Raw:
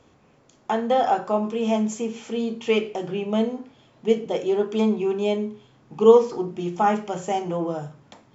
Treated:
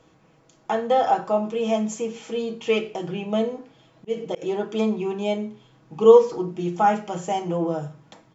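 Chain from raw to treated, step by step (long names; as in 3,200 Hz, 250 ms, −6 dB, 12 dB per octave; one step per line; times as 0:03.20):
comb filter 6.2 ms, depth 51%
0:03.40–0:04.42: volume swells 169 ms
level −1 dB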